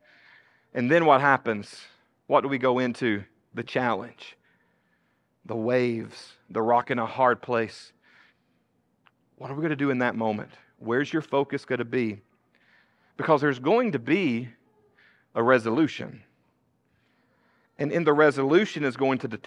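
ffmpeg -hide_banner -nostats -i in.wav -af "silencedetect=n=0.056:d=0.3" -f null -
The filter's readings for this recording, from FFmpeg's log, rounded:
silence_start: 0.00
silence_end: 0.77 | silence_duration: 0.77
silence_start: 1.59
silence_end: 2.30 | silence_duration: 0.72
silence_start: 3.17
silence_end: 3.58 | silence_duration: 0.41
silence_start: 4.01
silence_end: 5.51 | silence_duration: 1.50
silence_start: 6.01
silence_end: 6.56 | silence_duration: 0.55
silence_start: 7.65
silence_end: 9.45 | silence_duration: 1.80
silence_start: 10.42
silence_end: 10.88 | silence_duration: 0.46
silence_start: 12.11
silence_end: 13.20 | silence_duration: 1.09
silence_start: 14.40
silence_end: 15.37 | silence_duration: 0.97
silence_start: 16.06
silence_end: 17.81 | silence_duration: 1.75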